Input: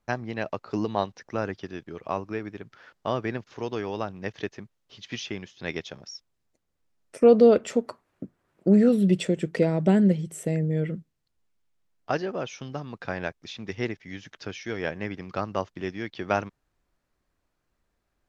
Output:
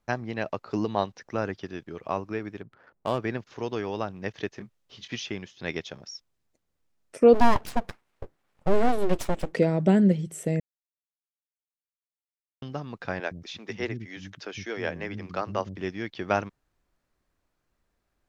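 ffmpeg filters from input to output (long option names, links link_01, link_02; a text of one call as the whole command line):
ffmpeg -i in.wav -filter_complex "[0:a]asplit=3[link_01][link_02][link_03];[link_01]afade=type=out:start_time=2.61:duration=0.02[link_04];[link_02]adynamicsmooth=sensitivity=6.5:basefreq=930,afade=type=in:start_time=2.61:duration=0.02,afade=type=out:start_time=3.18:duration=0.02[link_05];[link_03]afade=type=in:start_time=3.18:duration=0.02[link_06];[link_04][link_05][link_06]amix=inputs=3:normalize=0,asettb=1/sr,asplit=3[link_07][link_08][link_09];[link_07]atrim=end=4.554[link_10];[link_08]atrim=start=4.55:end=5.08,asetpts=PTS-STARTPTS,afade=type=in:duration=0.004:curve=qsin,afade=type=out:start_time=0.526:duration=0.004:curve=qsin,asplit=2[link_11][link_12];[link_12]adelay=24,volume=-8dB[link_13];[link_11][link_13]amix=inputs=2:normalize=0,atrim=end_sample=23373[link_14];[link_09]atrim=start=5.076[link_15];[link_10][link_14]acrossfade=duration=0.004:curve1=hsin:curve2=qsin[link_16];[link_16][link_15]acrossfade=duration=0.004:curve1=qsin:curve2=hsin,asplit=3[link_17][link_18][link_19];[link_17]afade=type=out:start_time=7.33:duration=0.02[link_20];[link_18]aeval=exprs='abs(val(0))':channel_layout=same,afade=type=in:start_time=7.33:duration=0.02,afade=type=out:start_time=9.52:duration=0.02[link_21];[link_19]afade=type=in:start_time=9.52:duration=0.02[link_22];[link_20][link_21][link_22]amix=inputs=3:normalize=0,asettb=1/sr,asplit=3[link_23][link_24][link_25];[link_23]atrim=end=13.204[link_26];[link_24]atrim=start=13.2:end=15.78,asetpts=PTS-STARTPTS,afade=type=in:duration=0.004:curve=qsin,afade=type=out:start_time=2.576:duration=0.004:curve=qsin,acrossover=split=250[link_27][link_28];[link_27]adelay=110[link_29];[link_29][link_28]amix=inputs=2:normalize=0,atrim=end_sample=113778[link_30];[link_25]atrim=start=15.776[link_31];[link_26][link_30]acrossfade=duration=0.004:curve1=hsin:curve2=qsin[link_32];[link_32][link_31]acrossfade=duration=0.004:curve1=qsin:curve2=hsin,asplit=3[link_33][link_34][link_35];[link_33]atrim=end=10.6,asetpts=PTS-STARTPTS,afade=type=out:start_time=10.596:duration=0.004:curve=hsin[link_36];[link_34]atrim=start=10.6:end=12.62,asetpts=PTS-STARTPTS,volume=0[link_37];[link_35]atrim=start=12.62,asetpts=PTS-STARTPTS,afade=type=in:duration=0.004:curve=hsin[link_38];[link_36][link_37][link_38]concat=n=3:v=0:a=1" out.wav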